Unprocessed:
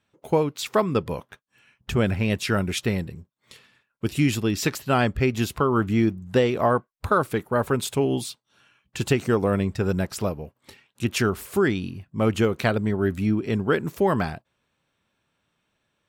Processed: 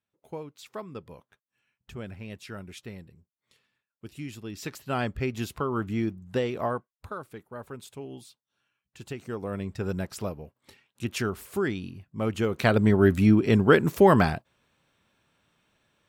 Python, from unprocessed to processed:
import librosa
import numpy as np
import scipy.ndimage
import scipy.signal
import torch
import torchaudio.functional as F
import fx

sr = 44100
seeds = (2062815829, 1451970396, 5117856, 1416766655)

y = fx.gain(x, sr, db=fx.line((4.33, -17.0), (4.98, -7.5), (6.64, -7.5), (7.2, -17.5), (9.0, -17.5), (9.85, -6.5), (12.39, -6.5), (12.83, 4.0)))